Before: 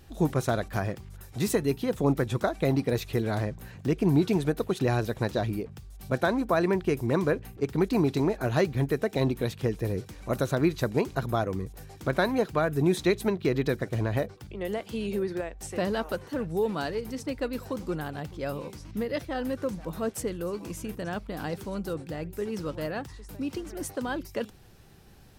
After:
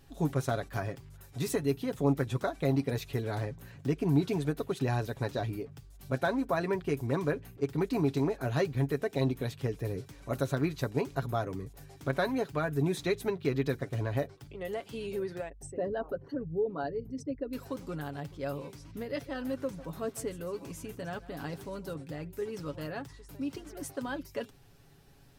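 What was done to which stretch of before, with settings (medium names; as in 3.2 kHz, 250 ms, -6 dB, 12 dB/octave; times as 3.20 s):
15.49–17.53 s: resonances exaggerated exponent 2
19.06–21.98 s: delay 151 ms -17 dB
whole clip: comb 7.2 ms, depth 54%; trim -6 dB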